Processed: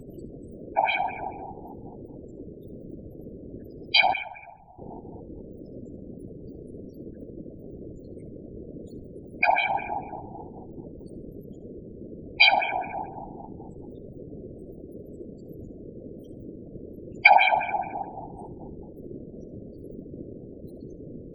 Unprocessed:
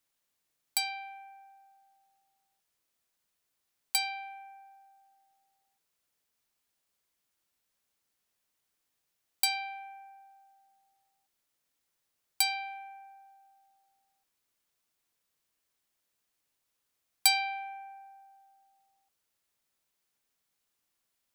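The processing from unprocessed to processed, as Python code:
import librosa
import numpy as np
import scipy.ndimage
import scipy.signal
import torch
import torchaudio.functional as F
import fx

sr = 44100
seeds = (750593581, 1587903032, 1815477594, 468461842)

p1 = fx.filter_lfo_lowpass(x, sr, shape='sine', hz=4.6, low_hz=680.0, high_hz=3400.0, q=4.7)
p2 = fx.quant_dither(p1, sr, seeds[0], bits=6, dither='triangular')
p3 = p1 + F.gain(torch.from_numpy(p2), -9.0).numpy()
p4 = fx.low_shelf_res(p3, sr, hz=570.0, db=13.5, q=1.5)
p5 = fx.spec_topn(p4, sr, count=16)
p6 = fx.tone_stack(p5, sr, knobs='10-0-10', at=(4.13, 4.79))
p7 = fx.echo_feedback(p6, sr, ms=70, feedback_pct=30, wet_db=-20)
p8 = fx.whisperise(p7, sr, seeds[1])
y = F.gain(torch.from_numpy(p8), 6.0).numpy()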